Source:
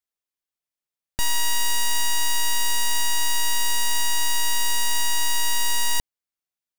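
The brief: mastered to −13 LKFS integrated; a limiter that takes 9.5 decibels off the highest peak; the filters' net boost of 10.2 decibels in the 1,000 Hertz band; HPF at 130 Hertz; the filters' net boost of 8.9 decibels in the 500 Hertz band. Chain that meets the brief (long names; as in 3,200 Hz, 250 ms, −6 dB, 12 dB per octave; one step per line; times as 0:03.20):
high-pass filter 130 Hz
parametric band 500 Hz +8.5 dB
parametric band 1,000 Hz +8.5 dB
level +16.5 dB
brickwall limiter −2 dBFS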